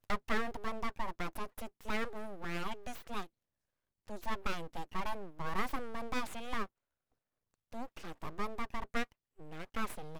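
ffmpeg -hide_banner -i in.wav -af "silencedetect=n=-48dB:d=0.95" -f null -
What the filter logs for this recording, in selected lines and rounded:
silence_start: 6.66
silence_end: 7.73 | silence_duration: 1.07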